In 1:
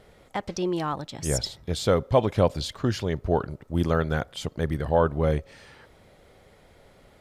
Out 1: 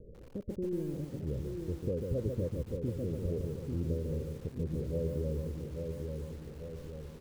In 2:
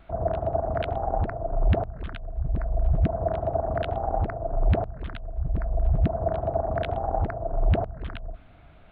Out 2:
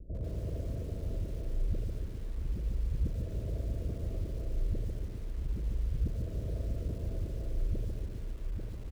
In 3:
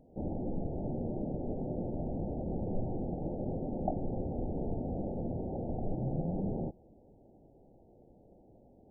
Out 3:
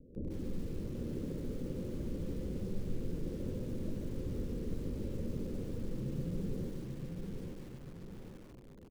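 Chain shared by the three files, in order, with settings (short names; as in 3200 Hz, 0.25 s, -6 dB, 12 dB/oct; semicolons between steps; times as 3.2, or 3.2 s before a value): in parallel at -11.5 dB: wrapped overs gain 21.5 dB; on the sum: steep low-pass 540 Hz 72 dB/oct; low shelf 78 Hz +6 dB; on a send: feedback echo 0.842 s, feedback 31%, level -9.5 dB; on the sum: compressor 2:1, threshold -42 dBFS; lo-fi delay 0.145 s, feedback 35%, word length 9-bit, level -4 dB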